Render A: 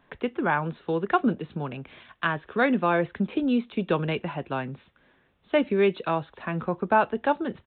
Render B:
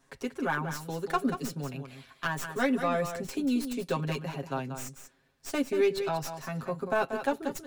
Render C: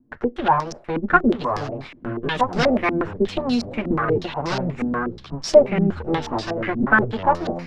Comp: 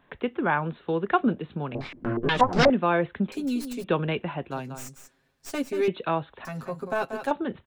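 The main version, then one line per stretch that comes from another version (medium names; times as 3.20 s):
A
1.75–2.70 s: from C
3.32–3.84 s: from B
4.51–5.88 s: from B
6.45–7.31 s: from B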